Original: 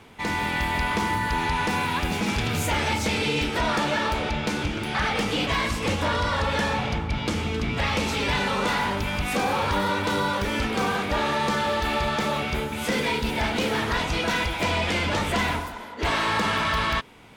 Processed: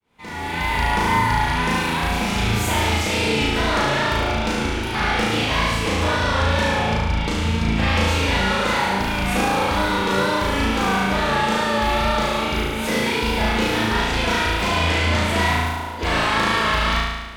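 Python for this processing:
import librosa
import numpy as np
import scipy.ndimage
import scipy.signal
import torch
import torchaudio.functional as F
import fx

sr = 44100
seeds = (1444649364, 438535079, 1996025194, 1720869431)

y = fx.fade_in_head(x, sr, length_s=0.75)
y = fx.wow_flutter(y, sr, seeds[0], rate_hz=2.1, depth_cents=65.0)
y = fx.room_flutter(y, sr, wall_m=6.2, rt60_s=1.2)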